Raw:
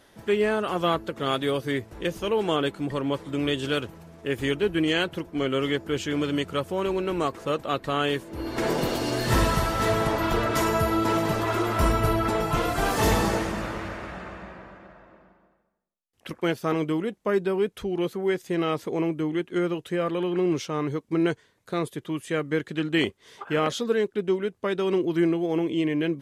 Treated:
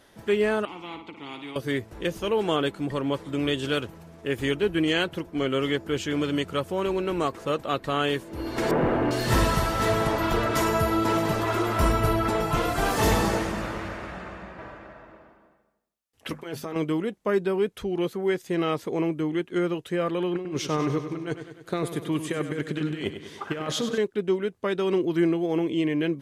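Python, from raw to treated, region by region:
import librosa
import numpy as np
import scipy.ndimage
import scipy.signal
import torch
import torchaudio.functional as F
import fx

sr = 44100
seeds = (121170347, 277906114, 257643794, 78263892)

y = fx.chain(x, sr, fx.vowel_filter(vowel='u'),
    fx.room_flutter(wall_m=9.7, rt60_s=0.3),
    fx.spectral_comp(ratio=2.0), at=(0.65, 1.56))
y = fx.chain(y, sr, fx.zero_step(step_db=-35.0),
    fx.lowpass(hz=2000.0, slope=24),
    fx.leveller(passes=1), at=(8.71, 9.11))
y = fx.chain(y, sr, fx.hum_notches(base_hz=50, count=5),
    fx.over_compress(threshold_db=-31.0, ratio=-1.0),
    fx.notch_comb(f0_hz=180.0), at=(14.58, 16.76))
y = fx.chain(y, sr, fx.over_compress(threshold_db=-27.0, ratio=-0.5),
    fx.echo_feedback(ms=98, feedback_pct=59, wet_db=-10.0), at=(20.35, 23.98))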